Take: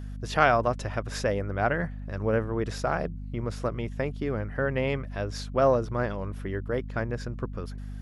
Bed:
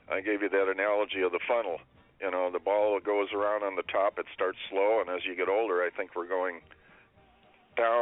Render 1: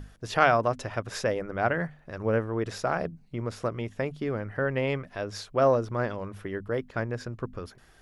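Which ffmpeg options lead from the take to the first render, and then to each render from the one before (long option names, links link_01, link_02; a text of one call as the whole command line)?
ffmpeg -i in.wav -af "bandreject=frequency=50:width_type=h:width=6,bandreject=frequency=100:width_type=h:width=6,bandreject=frequency=150:width_type=h:width=6,bandreject=frequency=200:width_type=h:width=6,bandreject=frequency=250:width_type=h:width=6" out.wav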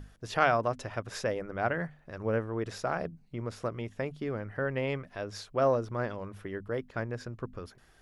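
ffmpeg -i in.wav -af "volume=-4dB" out.wav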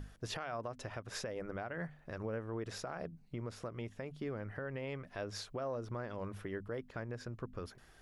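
ffmpeg -i in.wav -af "acompressor=threshold=-31dB:ratio=6,alimiter=level_in=6.5dB:limit=-24dB:level=0:latency=1:release=313,volume=-6.5dB" out.wav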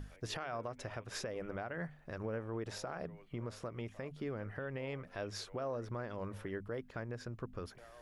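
ffmpeg -i in.wav -i bed.wav -filter_complex "[1:a]volume=-32dB[link_01];[0:a][link_01]amix=inputs=2:normalize=0" out.wav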